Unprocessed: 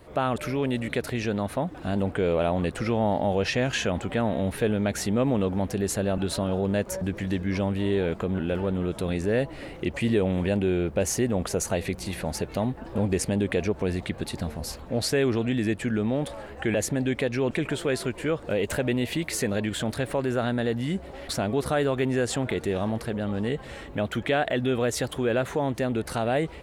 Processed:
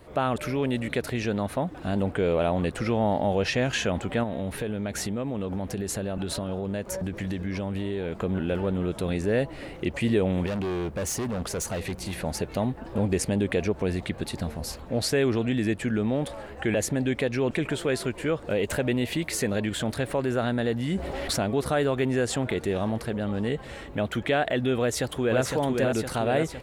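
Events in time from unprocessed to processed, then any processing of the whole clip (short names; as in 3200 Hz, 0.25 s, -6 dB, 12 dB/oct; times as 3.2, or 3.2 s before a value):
4.23–8.17 compressor, threshold -26 dBFS
10.46–12.14 hard clip -26.5 dBFS
20.92–21.43 fast leveller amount 50%
24.8–25.41 echo throw 0.51 s, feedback 60%, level -3.5 dB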